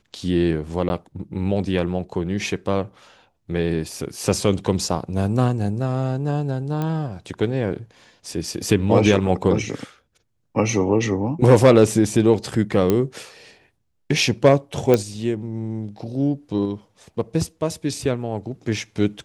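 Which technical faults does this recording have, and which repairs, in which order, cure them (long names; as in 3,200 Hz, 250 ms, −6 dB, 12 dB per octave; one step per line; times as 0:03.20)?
0:00.89–0:00.90: drop-out 11 ms
0:06.82: click −14 dBFS
0:12.90: click −6 dBFS
0:14.94: click −5 dBFS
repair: click removal
repair the gap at 0:00.89, 11 ms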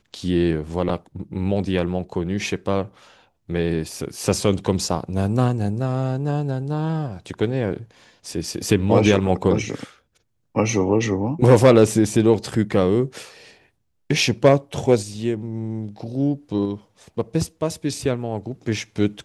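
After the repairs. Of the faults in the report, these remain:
none of them is left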